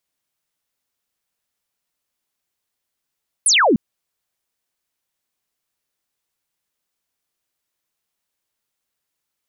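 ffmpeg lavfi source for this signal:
-f lavfi -i "aevalsrc='0.282*clip(t/0.002,0,1)*clip((0.3-t)/0.002,0,1)*sin(2*PI*11000*0.3/log(190/11000)*(exp(log(190/11000)*t/0.3)-1))':d=0.3:s=44100"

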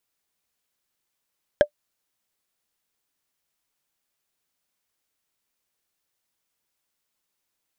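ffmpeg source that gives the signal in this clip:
-f lavfi -i "aevalsrc='0.501*pow(10,-3*t/0.08)*sin(2*PI*591*t)+0.211*pow(10,-3*t/0.024)*sin(2*PI*1629.4*t)+0.0891*pow(10,-3*t/0.011)*sin(2*PI*3193.8*t)+0.0376*pow(10,-3*t/0.006)*sin(2*PI*5279.4*t)+0.0158*pow(10,-3*t/0.004)*sin(2*PI*7883.9*t)':d=0.45:s=44100"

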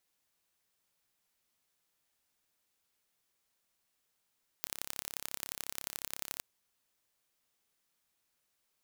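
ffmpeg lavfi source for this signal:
-f lavfi -i "aevalsrc='0.376*eq(mod(n,1293),0)*(0.5+0.5*eq(mod(n,3879),0))':d=1.78:s=44100"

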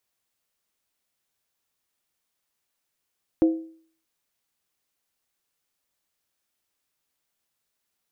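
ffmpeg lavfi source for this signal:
-f lavfi -i "aevalsrc='0.237*pow(10,-3*t/0.51)*sin(2*PI*324*t)+0.0631*pow(10,-3*t/0.404)*sin(2*PI*516.5*t)+0.0168*pow(10,-3*t/0.349)*sin(2*PI*692.1*t)+0.00447*pow(10,-3*t/0.337)*sin(2*PI*743.9*t)+0.00119*pow(10,-3*t/0.313)*sin(2*PI*859.6*t)':d=0.63:s=44100"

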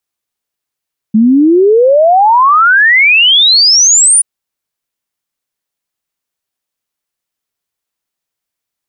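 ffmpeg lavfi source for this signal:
-f lavfi -i "aevalsrc='0.668*clip(min(t,3.08-t)/0.01,0,1)*sin(2*PI*210*3.08/log(9800/210)*(exp(log(9800/210)*t/3.08)-1))':d=3.08:s=44100"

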